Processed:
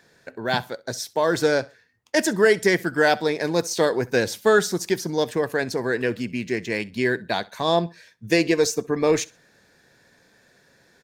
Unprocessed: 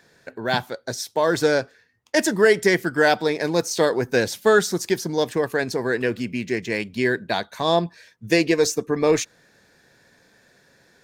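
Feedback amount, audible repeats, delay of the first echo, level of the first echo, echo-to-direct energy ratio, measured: 25%, 2, 65 ms, -22.5 dB, -22.0 dB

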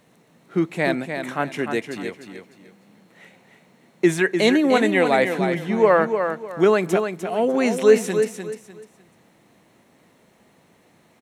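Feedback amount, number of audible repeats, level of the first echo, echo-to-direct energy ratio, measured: 27%, 3, -7.0 dB, -6.5 dB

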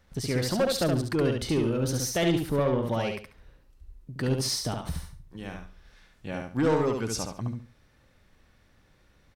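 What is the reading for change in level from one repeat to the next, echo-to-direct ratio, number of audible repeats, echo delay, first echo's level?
-12.0 dB, -3.5 dB, 3, 70 ms, -4.0 dB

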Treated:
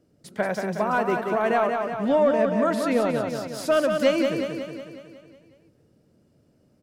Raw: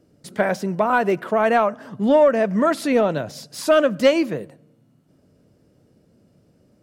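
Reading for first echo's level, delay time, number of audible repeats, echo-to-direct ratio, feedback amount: -5.0 dB, 0.183 s, 7, -3.5 dB, 57%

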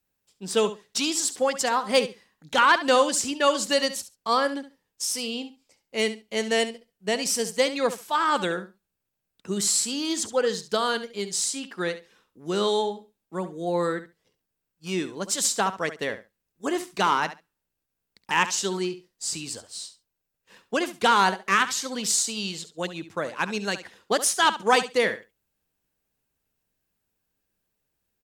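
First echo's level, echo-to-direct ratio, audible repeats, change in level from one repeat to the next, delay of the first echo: -13.0 dB, -13.0 dB, 2, -16.0 dB, 69 ms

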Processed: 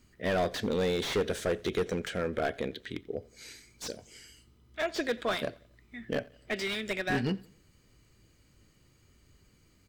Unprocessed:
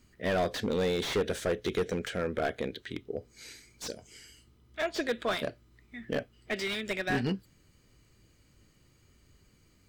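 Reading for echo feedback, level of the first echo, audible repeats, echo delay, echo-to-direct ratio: 45%, -23.5 dB, 2, 88 ms, -22.5 dB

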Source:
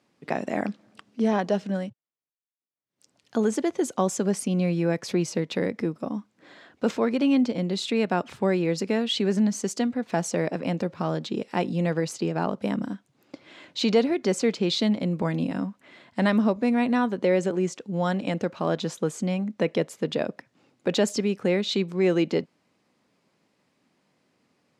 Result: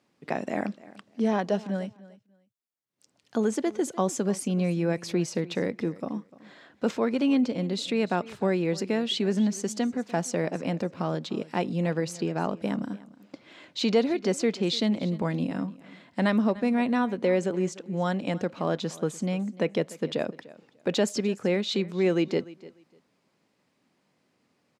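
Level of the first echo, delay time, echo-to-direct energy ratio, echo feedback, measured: -19.5 dB, 0.297 s, -19.5 dB, 19%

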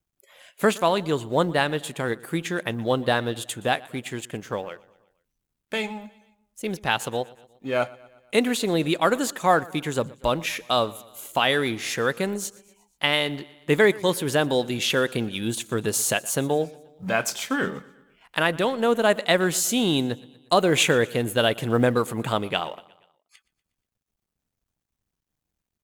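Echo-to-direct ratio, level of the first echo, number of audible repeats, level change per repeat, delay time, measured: -20.5 dB, -22.0 dB, 3, -5.0 dB, 0.12 s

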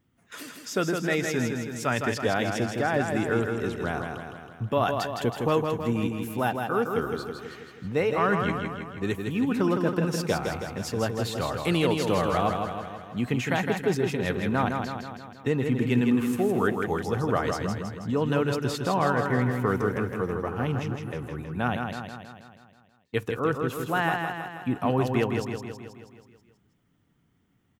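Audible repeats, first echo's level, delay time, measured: 7, -5.0 dB, 0.161 s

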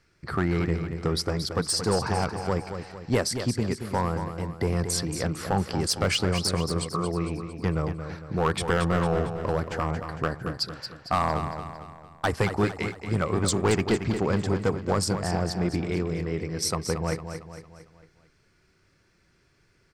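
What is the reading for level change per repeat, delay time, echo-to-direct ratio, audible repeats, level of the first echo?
-6.5 dB, 0.227 s, -7.5 dB, 5, -8.5 dB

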